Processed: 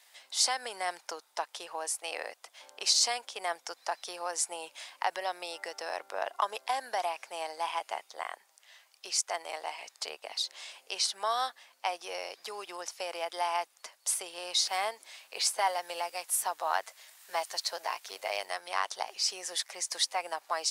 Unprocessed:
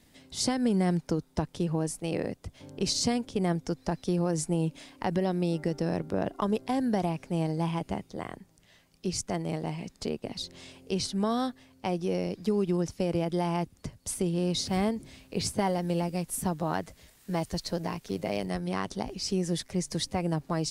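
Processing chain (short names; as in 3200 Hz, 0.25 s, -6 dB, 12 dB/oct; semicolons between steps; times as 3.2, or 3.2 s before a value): HPF 740 Hz 24 dB/oct; gain +4.5 dB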